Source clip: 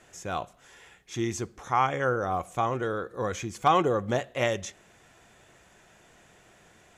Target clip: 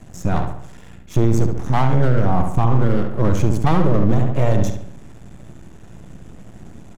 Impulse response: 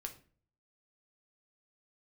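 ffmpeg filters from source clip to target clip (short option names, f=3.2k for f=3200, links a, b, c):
-filter_complex "[0:a]firequalizer=gain_entry='entry(190,0);entry(400,-16);entry(1800,-24);entry(9000,-19)':delay=0.05:min_phase=1,aeval=exprs='max(val(0),0)':c=same,asplit=2[a][b];[b]adelay=70,lowpass=f=3.6k:p=1,volume=-6dB,asplit=2[c][d];[d]adelay=70,lowpass=f=3.6k:p=1,volume=0.5,asplit=2[e][f];[f]adelay=70,lowpass=f=3.6k:p=1,volume=0.5,asplit=2[g][h];[h]adelay=70,lowpass=f=3.6k:p=1,volume=0.5,asplit=2[i][j];[j]adelay=70,lowpass=f=3.6k:p=1,volume=0.5,asplit=2[k][l];[l]adelay=70,lowpass=f=3.6k:p=1,volume=0.5[m];[a][c][e][g][i][k][m]amix=inputs=7:normalize=0,alimiter=level_in=31.5dB:limit=-1dB:release=50:level=0:latency=1,volume=-4dB"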